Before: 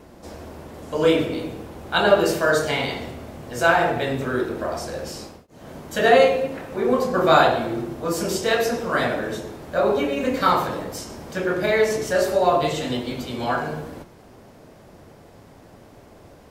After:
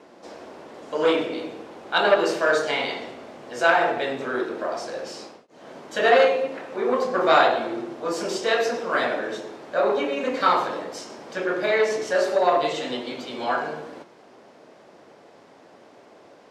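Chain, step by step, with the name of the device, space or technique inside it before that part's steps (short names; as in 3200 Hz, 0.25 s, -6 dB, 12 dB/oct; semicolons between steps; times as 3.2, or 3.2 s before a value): public-address speaker with an overloaded transformer (core saturation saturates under 950 Hz; BPF 320–5900 Hz)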